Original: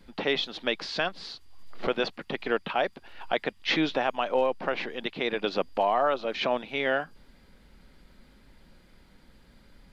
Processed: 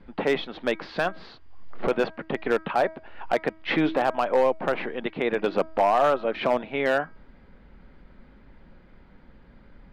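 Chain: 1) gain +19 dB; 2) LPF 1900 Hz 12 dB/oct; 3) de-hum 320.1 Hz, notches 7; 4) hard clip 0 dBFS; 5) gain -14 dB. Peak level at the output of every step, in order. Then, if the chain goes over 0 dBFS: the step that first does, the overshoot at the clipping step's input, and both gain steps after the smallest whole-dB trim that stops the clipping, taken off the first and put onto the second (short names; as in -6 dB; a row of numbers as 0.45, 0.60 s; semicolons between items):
+8.0, +7.0, +7.0, 0.0, -14.0 dBFS; step 1, 7.0 dB; step 1 +12 dB, step 5 -7 dB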